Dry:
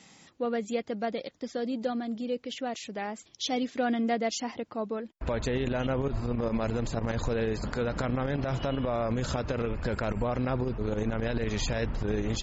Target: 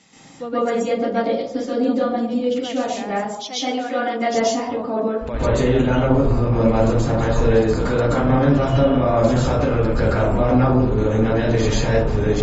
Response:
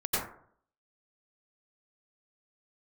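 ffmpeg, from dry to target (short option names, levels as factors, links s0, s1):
-filter_complex "[0:a]asettb=1/sr,asplit=3[s0][s1][s2];[s0]atrim=end=3.124[s3];[s1]atrim=start=3.12:end=4.22,asetpts=PTS-STARTPTS,afade=t=in:d=0.004:c=qsin,afade=t=out:st=1.096:d=0.004:c=qsin,highpass=f=630:p=1[s4];[s2]atrim=start=4.216[s5];[s3][s4]acrossfade=d=0.004:c1=hsin:c2=qsin[s6];[s6][s5]acrossfade=d=0.004:c1=qsin:c2=hsin[s7];[1:a]atrim=start_sample=2205,asetrate=31311,aresample=44100[s8];[s7][s8]afir=irnorm=-1:irlink=0"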